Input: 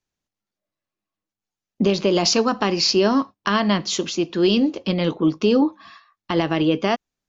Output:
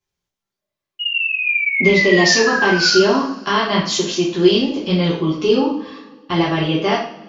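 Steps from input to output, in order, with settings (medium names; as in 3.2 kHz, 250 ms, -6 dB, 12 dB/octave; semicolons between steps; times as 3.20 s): painted sound fall, 0.99–2.98 s, 1.4–2.9 kHz -23 dBFS; two-slope reverb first 0.48 s, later 1.9 s, from -21 dB, DRR -6.5 dB; trim -3.5 dB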